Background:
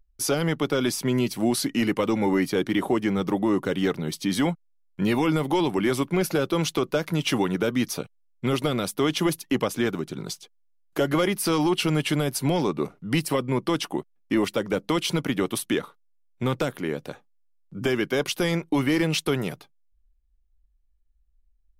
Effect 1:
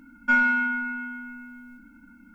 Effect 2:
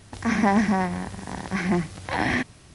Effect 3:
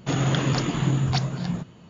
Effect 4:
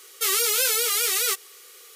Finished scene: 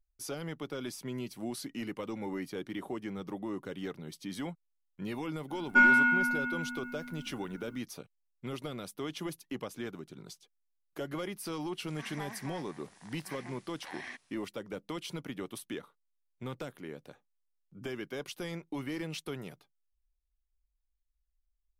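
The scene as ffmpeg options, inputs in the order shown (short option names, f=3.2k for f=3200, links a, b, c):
-filter_complex "[0:a]volume=-15dB[a];[2:a]highpass=f=1.4k:p=1[b];[1:a]atrim=end=2.34,asetpts=PTS-STARTPTS,volume=-1dB,afade=t=in:d=0.05,afade=t=out:st=2.29:d=0.05,adelay=5470[c];[b]atrim=end=2.74,asetpts=PTS-STARTPTS,volume=-15.5dB,afade=t=in:d=0.004:c=hsin,afade=t=out:st=2.736:d=0.004:c=hsin,adelay=11740[d];[a][c][d]amix=inputs=3:normalize=0"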